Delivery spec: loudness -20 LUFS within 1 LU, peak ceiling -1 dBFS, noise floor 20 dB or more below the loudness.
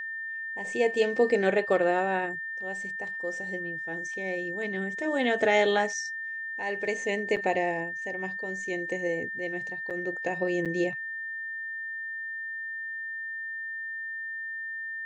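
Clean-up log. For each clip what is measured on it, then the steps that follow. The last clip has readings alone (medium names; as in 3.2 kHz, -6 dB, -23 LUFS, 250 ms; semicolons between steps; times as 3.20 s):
dropouts 3; longest dropout 6.9 ms; steady tone 1.8 kHz; tone level -33 dBFS; loudness -29.5 LUFS; peak level -11.5 dBFS; loudness target -20.0 LUFS
-> interpolate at 7.36/9.90/10.65 s, 6.9 ms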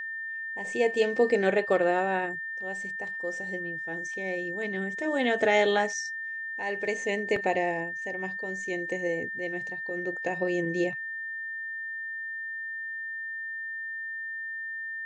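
dropouts 0; steady tone 1.8 kHz; tone level -33 dBFS
-> band-stop 1.8 kHz, Q 30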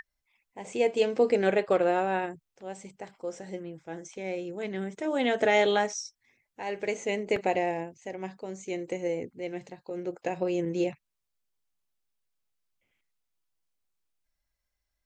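steady tone not found; loudness -29.5 LUFS; peak level -12.5 dBFS; loudness target -20.0 LUFS
-> trim +9.5 dB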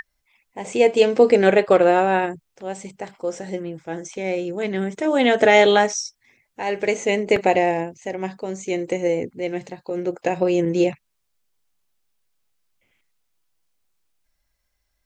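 loudness -20.0 LUFS; peak level -3.0 dBFS; noise floor -73 dBFS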